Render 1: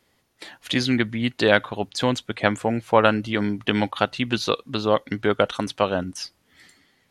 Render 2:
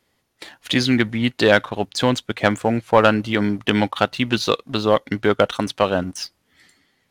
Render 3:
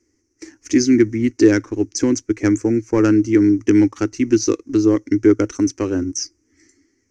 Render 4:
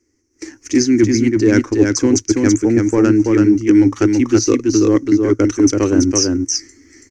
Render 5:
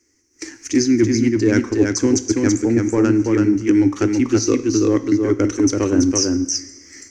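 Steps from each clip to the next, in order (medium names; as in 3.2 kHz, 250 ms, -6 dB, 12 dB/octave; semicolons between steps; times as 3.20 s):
waveshaping leveller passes 1
FFT filter 110 Hz 0 dB, 150 Hz -22 dB, 320 Hz +11 dB, 640 Hz -21 dB, 2.2 kHz -8 dB, 3.6 kHz -29 dB, 5.9 kHz +9 dB, 11 kHz -22 dB; trim +3.5 dB
reverse; compression 5:1, threshold -21 dBFS, peak gain reduction 13 dB; reverse; delay 331 ms -3.5 dB; level rider gain up to 14 dB
reverberation, pre-delay 3 ms, DRR 11.5 dB; tape noise reduction on one side only encoder only; trim -3 dB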